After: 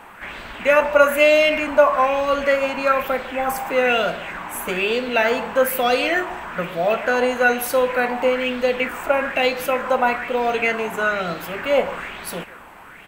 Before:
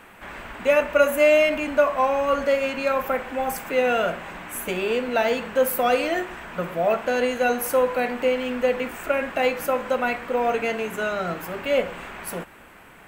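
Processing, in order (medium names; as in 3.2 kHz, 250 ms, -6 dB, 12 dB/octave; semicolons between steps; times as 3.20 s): speakerphone echo 150 ms, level -16 dB; sweeping bell 1.1 Hz 840–4200 Hz +10 dB; trim +1.5 dB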